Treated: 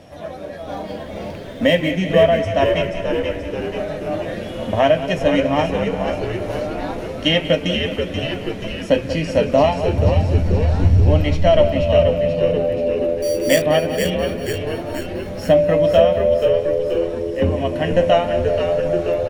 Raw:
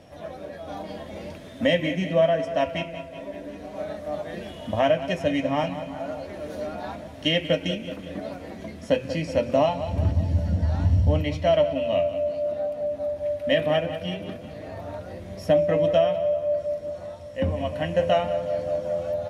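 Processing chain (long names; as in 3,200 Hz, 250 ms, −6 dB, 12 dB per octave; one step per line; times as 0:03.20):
0:00.61–0:01.92: running median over 5 samples
0:13.22–0:13.62: sample-rate reduction 5,200 Hz, jitter 0%
echo with shifted repeats 482 ms, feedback 61%, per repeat −84 Hz, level −6 dB
level +6 dB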